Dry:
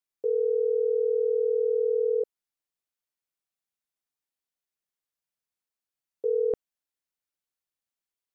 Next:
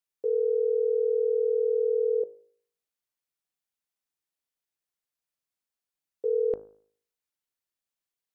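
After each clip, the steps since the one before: de-hum 52.59 Hz, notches 31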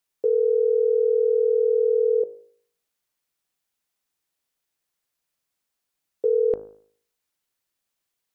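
compression 2:1, threshold -28 dBFS, peak gain reduction 3.5 dB; trim +8.5 dB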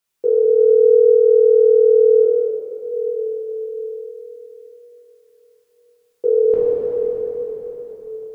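plate-style reverb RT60 4.7 s, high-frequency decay 0.9×, DRR -9 dB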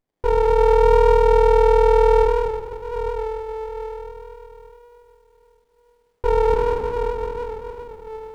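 sliding maximum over 33 samples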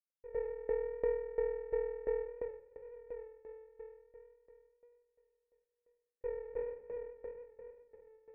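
bit crusher 12-bit; cascade formant filter e; sawtooth tremolo in dB decaying 2.9 Hz, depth 19 dB; trim -6.5 dB

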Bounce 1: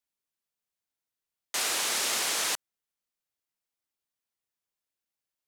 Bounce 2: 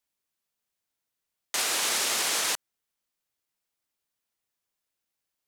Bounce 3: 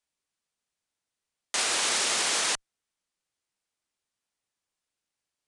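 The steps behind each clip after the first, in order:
peak limiter -21.5 dBFS, peak gain reduction 4.5 dB; trim +4.5 dB
in parallel at -9.5 dB: Schmitt trigger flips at -34 dBFS; on the sum: resampled via 22.05 kHz

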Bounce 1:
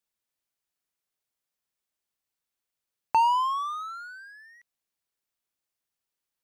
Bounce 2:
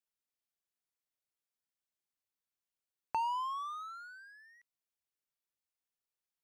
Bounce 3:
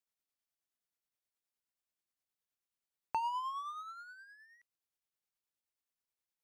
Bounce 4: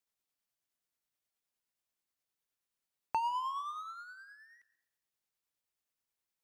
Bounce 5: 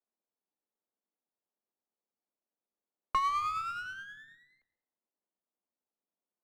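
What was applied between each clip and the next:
compression 1.5:1, threshold -29 dBFS, peak gain reduction 4.5 dB; trim -8.5 dB
tremolo 9.5 Hz, depth 40%
plate-style reverb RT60 0.8 s, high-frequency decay 0.75×, pre-delay 115 ms, DRR 17.5 dB; trim +2 dB
level-controlled noise filter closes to 670 Hz, open at -37 dBFS; frequency shift +180 Hz; sliding maximum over 5 samples; trim +4 dB

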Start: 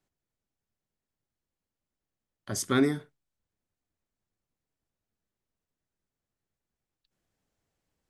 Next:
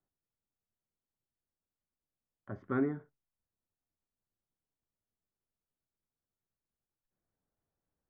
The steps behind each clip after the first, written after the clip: low-pass 1.6 kHz 24 dB/octave; trim -7 dB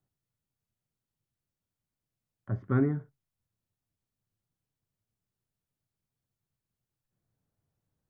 peaking EQ 120 Hz +13 dB 1.2 oct; trim +1.5 dB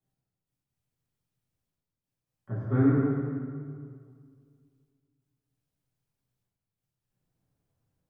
trance gate "x...x.xxxxxxxx" 133 bpm -12 dB; reverberation RT60 2.0 s, pre-delay 3 ms, DRR -11 dB; trim -8 dB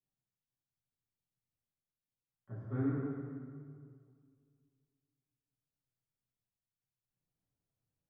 flange 0.93 Hz, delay 2.7 ms, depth 6.6 ms, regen -80%; trim -7.5 dB

